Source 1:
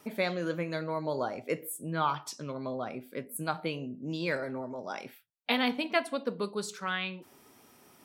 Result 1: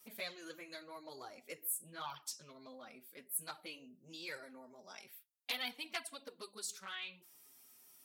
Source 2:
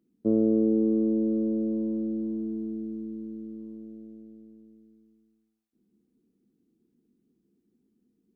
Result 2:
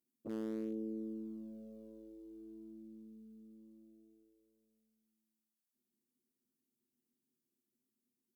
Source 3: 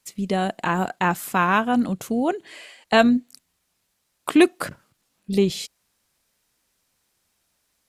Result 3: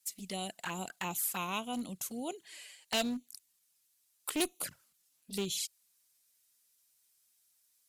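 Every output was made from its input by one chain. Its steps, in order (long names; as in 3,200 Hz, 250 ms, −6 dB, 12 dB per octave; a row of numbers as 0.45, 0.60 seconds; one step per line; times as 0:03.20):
flanger swept by the level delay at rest 8.1 ms, full sweep at −18.5 dBFS
asymmetric clip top −16.5 dBFS, bottom −9 dBFS
first-order pre-emphasis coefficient 0.9
level +2.5 dB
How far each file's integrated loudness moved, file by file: −11.0, −18.5, −15.0 LU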